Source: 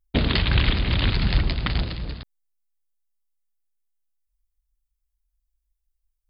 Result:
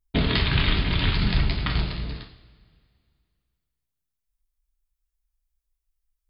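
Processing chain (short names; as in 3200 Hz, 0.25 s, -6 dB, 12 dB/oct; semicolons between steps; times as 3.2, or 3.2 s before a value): notch 550 Hz, Q 12; two-slope reverb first 0.55 s, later 2.3 s, from -20 dB, DRR 1 dB; gain -2.5 dB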